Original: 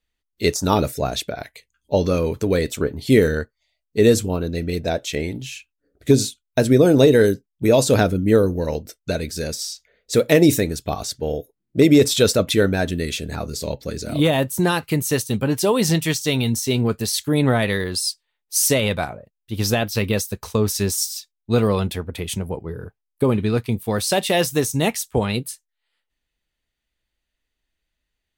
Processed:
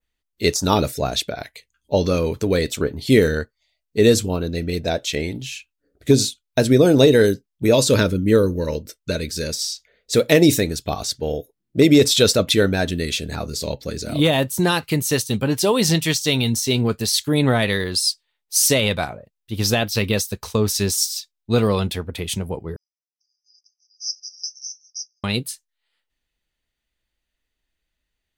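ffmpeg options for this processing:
-filter_complex "[0:a]asettb=1/sr,asplit=3[s0][s1][s2];[s0]atrim=end=7.744[s3];[s1]atrim=start=7.74:end=9.5,asetpts=PTS-STARTPTS,afade=t=in:d=0.004:c=qsin,afade=t=out:st=1.756:d=0.004:c=qsin,asuperstop=centerf=740:order=4:qfactor=3.3[s4];[s2]atrim=start=9.496[s5];[s3][s4]acrossfade=d=0.004:c1=hsin:c2=qsin[s6];[s6][s5]acrossfade=d=0.004:c1=qsin:c2=hsin,asettb=1/sr,asplit=3[s7][s8][s9];[s7]atrim=end=22.764[s10];[s8]atrim=start=22.76:end=25.24,asetpts=PTS-STARTPTS,afade=t=in:d=0.004:c=qsin,afade=t=out:st=2.476:d=0.004:c=qsin,asuperpass=centerf=5500:order=20:qfactor=3.8[s11];[s9]atrim=start=25.236[s12];[s10][s11]acrossfade=d=0.004:c1=hsin:c2=qsin[s13];[s13][s12]acrossfade=d=0.004:c1=qsin:c2=hsin,adynamicequalizer=threshold=0.0141:dfrequency=4200:dqfactor=0.96:tfrequency=4200:tqfactor=0.96:attack=5:release=100:ratio=0.375:range=2.5:mode=boostabove:tftype=bell"

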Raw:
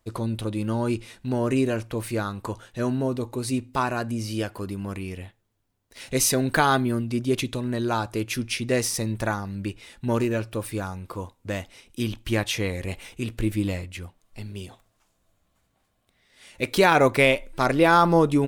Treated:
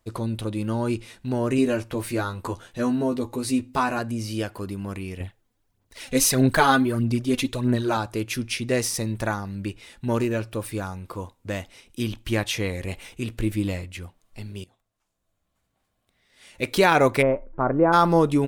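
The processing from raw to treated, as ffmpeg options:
-filter_complex "[0:a]asettb=1/sr,asplit=3[s0][s1][s2];[s0]atrim=end=1.574[s3];[s1]atrim=start=1.57:end=3.99,asetpts=PTS-STARTPTS,afade=t=in:d=0.004:c=qsin,afade=t=out:st=2.416:d=0.004:c=qsin,asplit=2[s4][s5];[s5]adelay=12,volume=0.631[s6];[s4][s6]amix=inputs=2:normalize=0,atrim=end_sample=106722[s7];[s2]atrim=start=3.986[s8];[s3][s7]acrossfade=d=0.004:c1=hsin:c2=qsin[s9];[s9][s8]acrossfade=d=0.004:c1=qsin:c2=hsin,asettb=1/sr,asplit=3[s10][s11][s12];[s10]atrim=end=5.204[s13];[s11]atrim=start=5.2:end=7.97,asetpts=PTS-STARTPTS,afade=t=in:d=0.004:c=qsin,afade=t=out:st=2.766:d=0.004:c=qsin,aphaser=in_gain=1:out_gain=1:delay=4.1:decay=0.57:speed=1.6:type=sinusoidal[s14];[s12]atrim=start=7.966[s15];[s13][s14]acrossfade=d=0.004:c1=hsin:c2=qsin[s16];[s16][s15]acrossfade=d=0.004:c1=qsin:c2=hsin,asplit=3[s17][s18][s19];[s17]afade=t=out:st=17.21:d=0.02[s20];[s18]lowpass=f=1300:w=0.5412,lowpass=f=1300:w=1.3066,afade=t=in:st=17.21:d=0.02,afade=t=out:st=17.92:d=0.02[s21];[s19]afade=t=in:st=17.92:d=0.02[s22];[s20][s21][s22]amix=inputs=3:normalize=0,asplit=2[s23][s24];[s23]atrim=end=14.64,asetpts=PTS-STARTPTS,afade=t=out:st=14.636:d=0.004:c=hsin:silence=0.112202[s25];[s24]atrim=start=14.64,asetpts=PTS-STARTPTS,afade=t=in:d=2.01:silence=0.112202[s26];[s25][s26]concat=n=2:v=0:a=1"

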